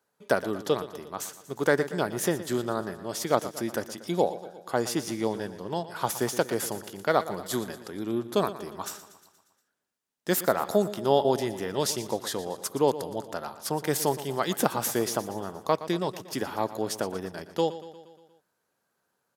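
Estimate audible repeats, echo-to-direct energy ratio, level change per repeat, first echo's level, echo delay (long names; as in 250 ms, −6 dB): 5, −12.5 dB, −4.5 dB, −14.5 dB, 118 ms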